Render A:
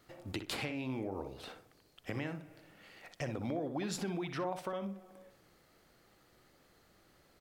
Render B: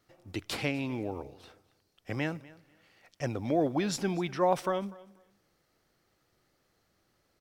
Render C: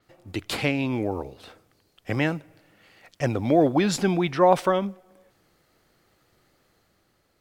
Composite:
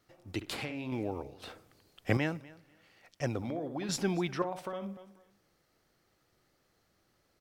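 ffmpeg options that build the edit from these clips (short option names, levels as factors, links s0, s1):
-filter_complex "[0:a]asplit=3[s0][s1][s2];[1:a]asplit=5[s3][s4][s5][s6][s7];[s3]atrim=end=0.412[s8];[s0]atrim=start=0.408:end=0.922[s9];[s4]atrim=start=0.918:end=1.422[s10];[2:a]atrim=start=1.418:end=2.172[s11];[s5]atrim=start=2.168:end=3.422[s12];[s1]atrim=start=3.418:end=3.892[s13];[s6]atrim=start=3.888:end=4.422[s14];[s2]atrim=start=4.418:end=4.972[s15];[s7]atrim=start=4.968[s16];[s8][s9]acrossfade=d=0.004:c1=hsin:c2=hsin[s17];[s17][s10]acrossfade=d=0.004:c1=hsin:c2=hsin[s18];[s18][s11]acrossfade=d=0.004:c1=hsin:c2=hsin[s19];[s19][s12]acrossfade=d=0.004:c1=hsin:c2=hsin[s20];[s20][s13]acrossfade=d=0.004:c1=hsin:c2=hsin[s21];[s21][s14]acrossfade=d=0.004:c1=hsin:c2=hsin[s22];[s22][s15]acrossfade=d=0.004:c1=hsin:c2=hsin[s23];[s23][s16]acrossfade=d=0.004:c1=hsin:c2=hsin"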